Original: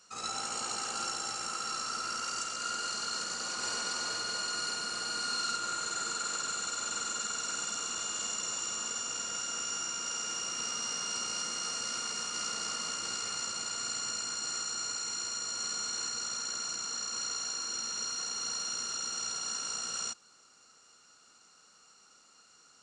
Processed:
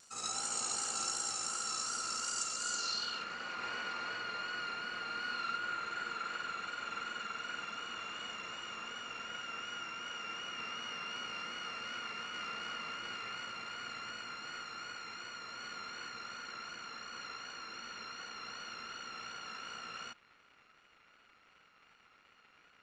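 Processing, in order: crackle 280/s -46 dBFS; low-pass sweep 8500 Hz -> 2300 Hz, 2.65–3.27; vibrato 2.7 Hz 35 cents; gain -4.5 dB

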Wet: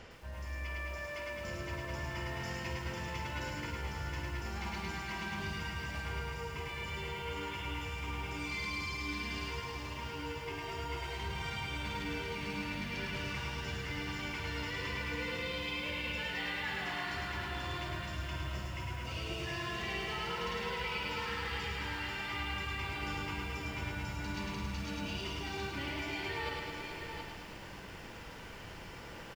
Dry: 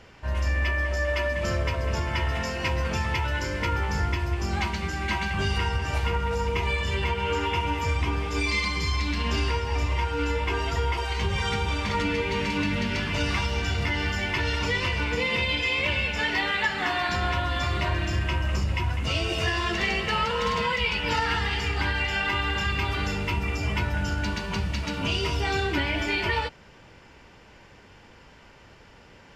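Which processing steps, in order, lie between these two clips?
reverse; compressor 12:1, threshold -39 dBFS, peak gain reduction 18.5 dB; reverse; tapped delay 54/102/720 ms -8/-5/-6 dB; lo-fi delay 0.108 s, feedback 80%, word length 10-bit, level -5 dB

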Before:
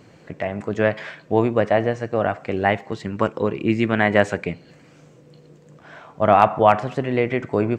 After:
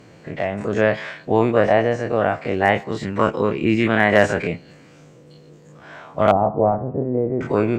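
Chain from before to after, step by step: spectral dilation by 60 ms; one-sided clip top -4.5 dBFS, bottom -1 dBFS; 6.31–7.41 Bessel low-pass 550 Hz, order 4; gain -1 dB

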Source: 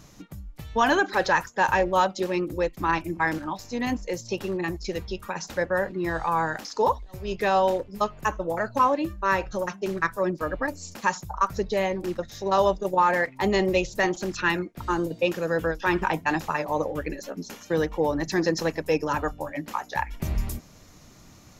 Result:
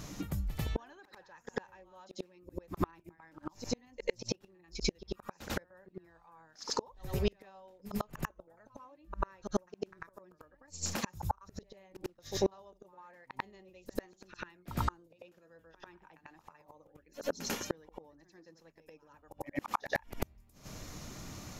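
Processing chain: flipped gate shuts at -22 dBFS, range -39 dB; reverse echo 94 ms -11.5 dB; gain +4.5 dB

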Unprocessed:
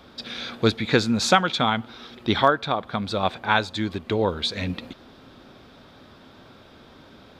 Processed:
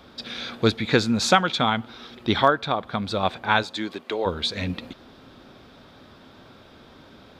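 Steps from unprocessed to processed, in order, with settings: 3.62–4.25 HPF 200 Hz -> 490 Hz 12 dB/oct

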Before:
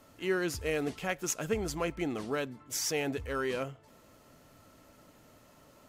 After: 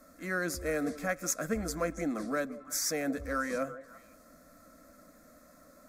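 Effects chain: fixed phaser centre 590 Hz, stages 8; delay with a stepping band-pass 0.17 s, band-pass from 410 Hz, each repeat 1.4 oct, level -11 dB; gain +3.5 dB

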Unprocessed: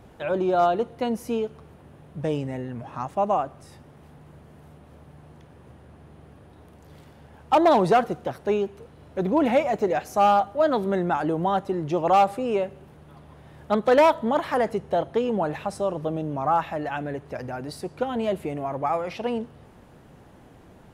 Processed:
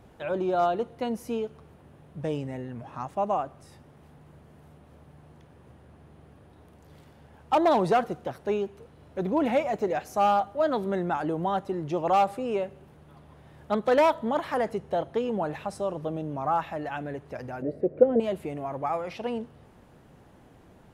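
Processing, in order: 17.62–18.2 EQ curve 100 Hz 0 dB, 590 Hz +15 dB, 850 Hz -10 dB, 2000 Hz -5 dB, 4700 Hz -30 dB; gain -4 dB

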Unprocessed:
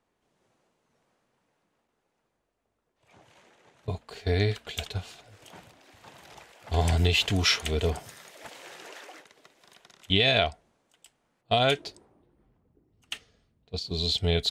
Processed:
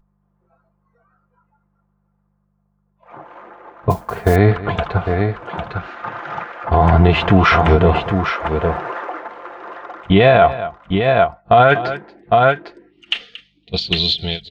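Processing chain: ending faded out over 1.24 s; low-pass sweep 1200 Hz -> 3300 Hz, 11.35–13.23; tapped delay 0.23/0.804 s -19/-8 dB; buzz 50 Hz, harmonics 4, -62 dBFS -1 dB/oct; spectral noise reduction 21 dB; comb 5.8 ms, depth 40%; 3.9–4.36 modulation noise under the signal 22 dB; 5.71–6.65 spectral gain 1200–7300 Hz +7 dB; maximiser +18 dB; ending taper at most 300 dB/s; gain -1 dB

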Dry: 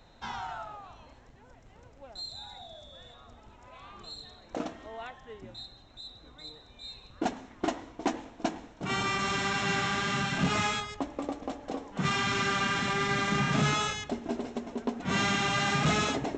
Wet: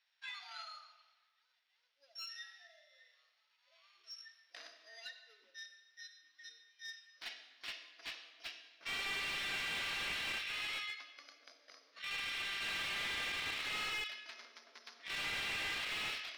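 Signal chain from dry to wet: sample sorter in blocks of 8 samples; spectral noise reduction 19 dB; dynamic EQ 2700 Hz, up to +5 dB, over -50 dBFS, Q 1.8; 10.37–12.62 compressor 6:1, threshold -38 dBFS, peak gain reduction 14 dB; limiter -23 dBFS, peak gain reduction 5.5 dB; soft clip -38 dBFS, distortion -6 dB; Butterworth band-pass 2800 Hz, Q 1.2; reverb RT60 1.3 s, pre-delay 10 ms, DRR 7.5 dB; slew limiter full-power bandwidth 13 Hz; gain +9 dB

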